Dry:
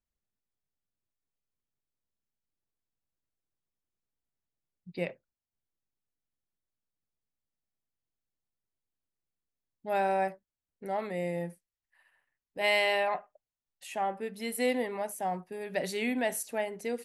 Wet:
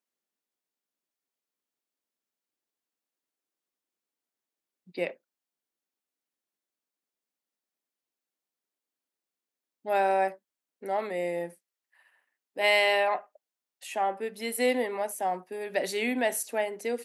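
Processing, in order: high-pass 240 Hz 24 dB/octave; trim +3.5 dB

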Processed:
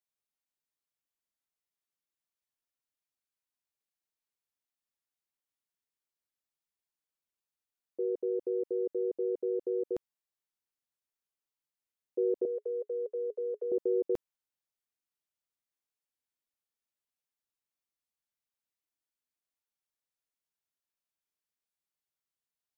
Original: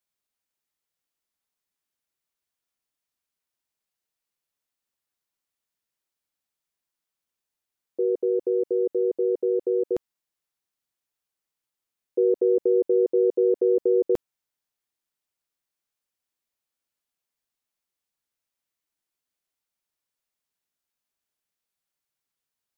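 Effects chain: 12.45–13.72 s: rippled Chebyshev high-pass 410 Hz, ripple 3 dB; trim -8.5 dB

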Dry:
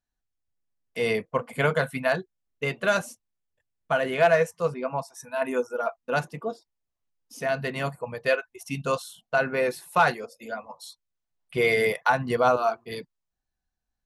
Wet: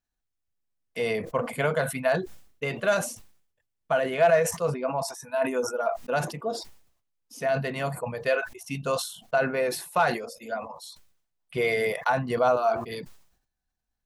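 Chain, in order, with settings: in parallel at 0 dB: compression, threshold -29 dBFS, peak gain reduction 13.5 dB; on the sum: dynamic bell 640 Hz, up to +5 dB, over -34 dBFS, Q 2.6; decay stretcher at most 95 dB/s; trim -6.5 dB

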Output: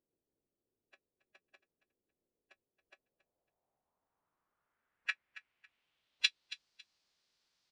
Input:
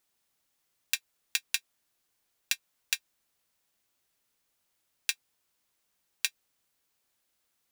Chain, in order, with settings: low-pass sweep 410 Hz -> 4.8 kHz, 2.73–6.63 s; formant-preserving pitch shift -6 st; feedback delay 276 ms, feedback 25%, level -16 dB; trim -1.5 dB

